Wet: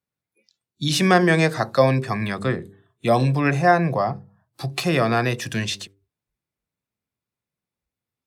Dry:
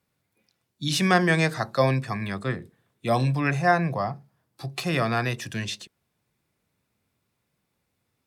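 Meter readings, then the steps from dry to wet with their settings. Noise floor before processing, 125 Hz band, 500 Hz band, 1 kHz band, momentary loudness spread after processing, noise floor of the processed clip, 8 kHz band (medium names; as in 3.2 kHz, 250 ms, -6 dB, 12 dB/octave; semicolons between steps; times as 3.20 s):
-77 dBFS, +3.5 dB, +6.0 dB, +4.0 dB, 13 LU, under -85 dBFS, +4.0 dB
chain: de-hum 98.47 Hz, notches 5; spectral noise reduction 20 dB; dynamic bell 420 Hz, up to +5 dB, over -34 dBFS, Q 0.82; in parallel at +2.5 dB: compression, threshold -31 dBFS, peak gain reduction 17.5 dB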